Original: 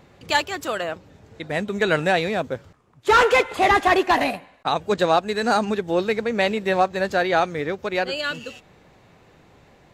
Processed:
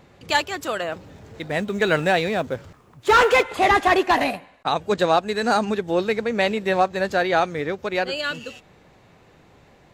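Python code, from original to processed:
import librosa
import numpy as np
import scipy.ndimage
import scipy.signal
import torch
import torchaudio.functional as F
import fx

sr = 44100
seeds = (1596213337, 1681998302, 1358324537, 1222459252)

y = fx.law_mismatch(x, sr, coded='mu', at=(0.92, 3.43))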